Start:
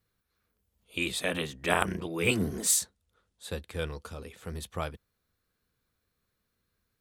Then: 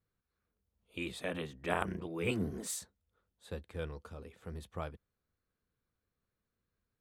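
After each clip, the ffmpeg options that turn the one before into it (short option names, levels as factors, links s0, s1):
-af "highshelf=f=2500:g=-10.5,volume=0.531"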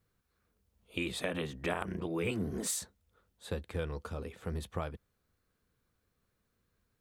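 -af "acompressor=threshold=0.0112:ratio=6,volume=2.51"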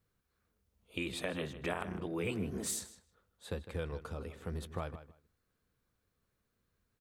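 -filter_complex "[0:a]asplit=2[s0][s1];[s1]adelay=156,lowpass=f=4200:p=1,volume=0.237,asplit=2[s2][s3];[s3]adelay=156,lowpass=f=4200:p=1,volume=0.18[s4];[s0][s2][s4]amix=inputs=3:normalize=0,volume=0.75"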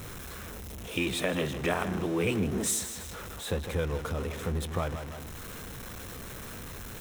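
-af "aeval=exprs='val(0)+0.5*0.00841*sgn(val(0))':c=same,bandreject=f=4600:w=7,volume=2.11"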